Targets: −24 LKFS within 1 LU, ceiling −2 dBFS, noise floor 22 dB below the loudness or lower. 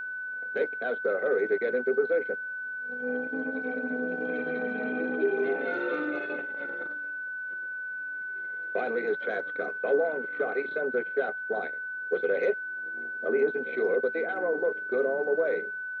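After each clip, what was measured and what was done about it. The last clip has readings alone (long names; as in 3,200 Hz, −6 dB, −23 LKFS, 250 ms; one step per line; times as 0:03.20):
interfering tone 1,500 Hz; level of the tone −33 dBFS; integrated loudness −30.0 LKFS; sample peak −14.5 dBFS; target loudness −24.0 LKFS
→ notch filter 1,500 Hz, Q 30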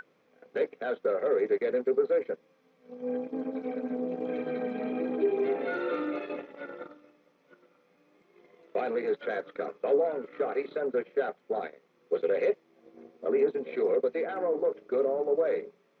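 interfering tone none found; integrated loudness −30.5 LKFS; sample peak −15.5 dBFS; target loudness −24.0 LKFS
→ level +6.5 dB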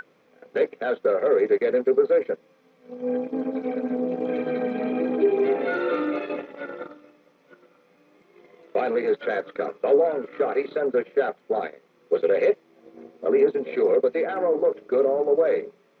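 integrated loudness −24.0 LKFS; sample peak −9.0 dBFS; background noise floor −61 dBFS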